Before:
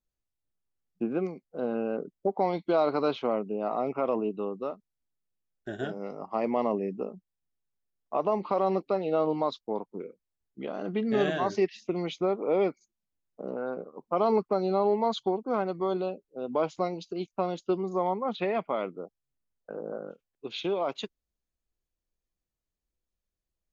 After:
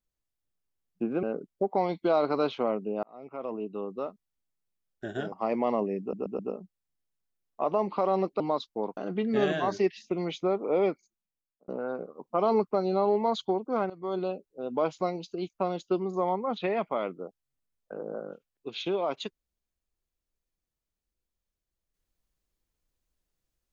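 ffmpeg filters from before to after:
ffmpeg -i in.wav -filter_complex "[0:a]asplit=11[link_01][link_02][link_03][link_04][link_05][link_06][link_07][link_08][link_09][link_10][link_11];[link_01]atrim=end=1.232[link_12];[link_02]atrim=start=1.868:end=3.67,asetpts=PTS-STARTPTS,afade=type=out:start_time=1.798:duration=0.004:curve=hsin[link_13];[link_03]atrim=start=3.67:end=5.962,asetpts=PTS-STARTPTS,afade=type=in:duration=1.03[link_14];[link_04]atrim=start=6.238:end=7.052[link_15];[link_05]atrim=start=6.918:end=7.052[link_16];[link_06]atrim=start=6.918:end=7.052[link_17];[link_07]atrim=start=6.918:end=8.932[link_18];[link_08]atrim=start=9.318:end=9.892[link_19];[link_09]atrim=start=10.748:end=13.46,asetpts=PTS-STARTPTS,afade=type=out:start_time=1.902:duration=0.81[link_20];[link_10]atrim=start=13.46:end=15.68,asetpts=PTS-STARTPTS,afade=type=in:duration=0.004:curve=hsin,afade=type=out:start_time=2.216:duration=0.004:curve=hsin:silence=0.141254[link_21];[link_11]atrim=start=15.68,asetpts=PTS-STARTPTS,afade=type=in:duration=0.33:silence=0.141254[link_22];[link_13][link_14]concat=n=2:v=0:a=1[link_23];[link_12][link_23]acrossfade=duration=0.004:curve1=hsin:curve2=hsin[link_24];[link_24][link_15]acrossfade=duration=0.004:curve1=hsin:curve2=hsin[link_25];[link_25][link_16]acrossfade=duration=0.004:curve1=hsin:curve2=hsin[link_26];[link_26][link_17]acrossfade=duration=0.004:curve1=hsin:curve2=hsin[link_27];[link_27][link_18]acrossfade=duration=0.004:curve1=hsin:curve2=hsin[link_28];[link_28][link_19]acrossfade=duration=0.004:curve1=hsin:curve2=hsin[link_29];[link_20][link_21][link_22]concat=n=3:v=0:a=1[link_30];[link_29][link_30]acrossfade=duration=0.004:curve1=hsin:curve2=hsin" out.wav

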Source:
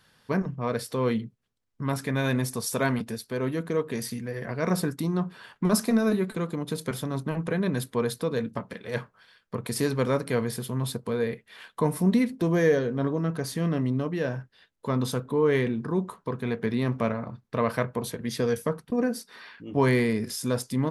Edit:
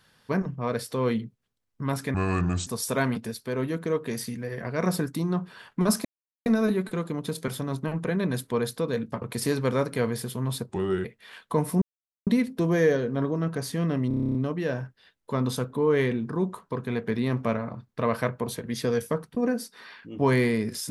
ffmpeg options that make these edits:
ffmpeg -i in.wav -filter_complex "[0:a]asplit=17[link_01][link_02][link_03][link_04][link_05][link_06][link_07][link_08][link_09][link_10][link_11][link_12][link_13][link_14][link_15][link_16][link_17];[link_01]atrim=end=2.144[link_18];[link_02]atrim=start=2.14:end=2.51,asetpts=PTS-STARTPTS,asetrate=30870,aresample=44100[link_19];[link_03]atrim=start=2.506:end=5.89,asetpts=PTS-STARTPTS,afade=type=out:start_time=3.38:duration=0.004:curve=hsin,apad=pad_dur=0.41[link_20];[link_04]atrim=start=5.89:end=8.652,asetpts=PTS-STARTPTS,afade=type=in:duration=0.004:curve=hsin[link_21];[link_05]atrim=start=9.558:end=11.034[link_22];[link_06]atrim=start=11.03:end=11.32,asetpts=PTS-STARTPTS,asetrate=35721,aresample=44100[link_23];[link_07]atrim=start=11.316:end=12.09,asetpts=PTS-STARTPTS,afade=type=out:start_time=0.77:duration=0.004:curve=hsin,apad=pad_dur=0.45[link_24];[link_08]atrim=start=12.09:end=13.932,asetpts=PTS-STARTPTS,afade=type=in:duration=0.004:curve=hsin[link_25];[link_09]atrim=start=13.898:end=13.932[link_26];[link_10]atrim=start=13.898:end=13.932[link_27];[link_11]atrim=start=13.898:end=13.932[link_28];[link_12]atrim=start=13.898:end=13.932[link_29];[link_13]atrim=start=13.898:end=13.932[link_30];[link_14]atrim=start=13.898:end=13.932[link_31];[link_15]atrim=start=13.898:end=13.932[link_32];[link_16]atrim=start=13.898:end=13.932[link_33];[link_17]atrim=start=13.898[link_34];[link_18][link_19]acrossfade=duration=0.004:curve1=hsin:curve2=hsin[link_35];[link_20][link_21]concat=n=2:v=0:a=1[link_36];[link_35][link_36]acrossfade=duration=0.004:curve1=hsin:curve2=hsin[link_37];[link_37][link_22]acrossfade=duration=0.004:curve1=hsin:curve2=hsin[link_38];[link_38][link_23]acrossfade=duration=0.004:curve1=hsin:curve2=hsin[link_39];[link_24][link_25]concat=n=2:v=0:a=1[link_40];[link_39][link_40]acrossfade=duration=0.004:curve1=hsin:curve2=hsin[link_41];[link_41][link_26]acrossfade=duration=0.004:curve1=hsin:curve2=hsin[link_42];[link_42][link_27]acrossfade=duration=0.004:curve1=hsin:curve2=hsin[link_43];[link_43][link_28]acrossfade=duration=0.004:curve1=hsin:curve2=hsin[link_44];[link_44][link_29]acrossfade=duration=0.004:curve1=hsin:curve2=hsin[link_45];[link_45][link_30]acrossfade=duration=0.004:curve1=hsin:curve2=hsin[link_46];[link_46][link_31]acrossfade=duration=0.004:curve1=hsin:curve2=hsin[link_47];[link_47][link_32]acrossfade=duration=0.004:curve1=hsin:curve2=hsin[link_48];[link_48][link_33]acrossfade=duration=0.004:curve1=hsin:curve2=hsin[link_49];[link_49][link_34]acrossfade=duration=0.004:curve1=hsin:curve2=hsin" out.wav

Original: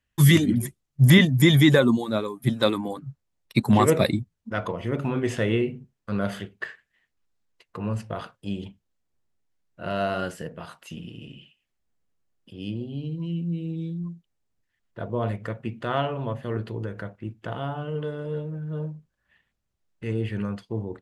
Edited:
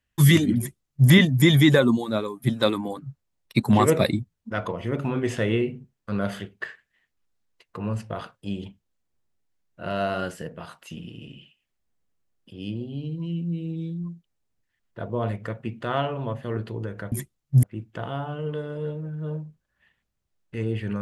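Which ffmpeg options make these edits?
ffmpeg -i in.wav -filter_complex "[0:a]asplit=3[link_01][link_02][link_03];[link_01]atrim=end=17.122[link_04];[link_02]atrim=start=0.578:end=1.092[link_05];[link_03]atrim=start=17.118[link_06];[link_04][link_05]acrossfade=duration=0.004:curve1=hsin:curve2=hsin[link_07];[link_07][link_06]acrossfade=duration=0.004:curve1=hsin:curve2=hsin" out.wav

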